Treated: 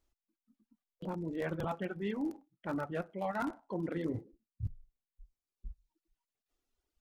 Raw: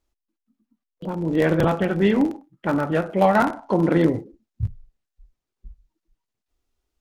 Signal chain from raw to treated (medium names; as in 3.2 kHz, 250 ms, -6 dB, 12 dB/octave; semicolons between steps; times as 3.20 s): reverb removal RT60 1.6 s; reverse; compression 6:1, threshold -31 dBFS, peak gain reduction 17 dB; reverse; trim -3 dB